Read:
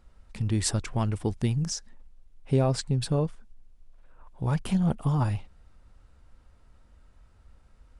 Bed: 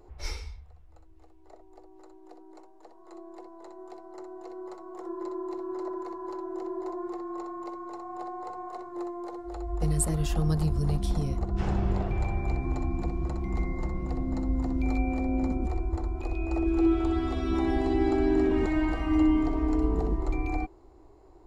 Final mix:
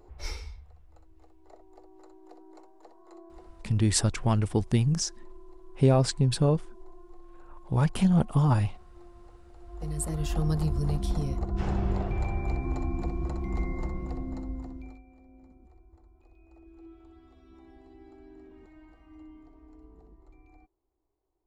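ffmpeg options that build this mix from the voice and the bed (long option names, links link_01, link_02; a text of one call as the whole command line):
ffmpeg -i stem1.wav -i stem2.wav -filter_complex "[0:a]adelay=3300,volume=2.5dB[link_01];[1:a]volume=17dB,afade=type=out:start_time=2.87:duration=0.97:silence=0.125893,afade=type=in:start_time=9.58:duration=0.79:silence=0.125893,afade=type=out:start_time=13.79:duration=1.22:silence=0.0501187[link_02];[link_01][link_02]amix=inputs=2:normalize=0" out.wav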